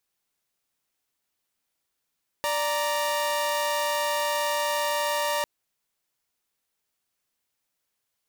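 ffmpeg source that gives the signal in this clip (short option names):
-f lavfi -i "aevalsrc='0.0596*((2*mod(587.33*t,1)-1)+(2*mod(932.33*t,1)-1))':d=3:s=44100"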